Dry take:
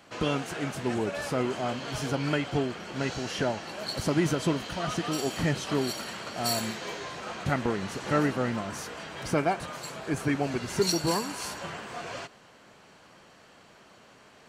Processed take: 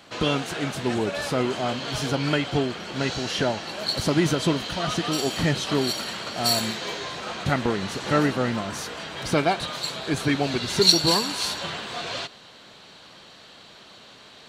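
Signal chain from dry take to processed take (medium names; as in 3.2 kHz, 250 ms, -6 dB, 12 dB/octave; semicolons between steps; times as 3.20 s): peaking EQ 3.8 kHz +7 dB 0.61 oct, from 9.32 s +14.5 dB; trim +4 dB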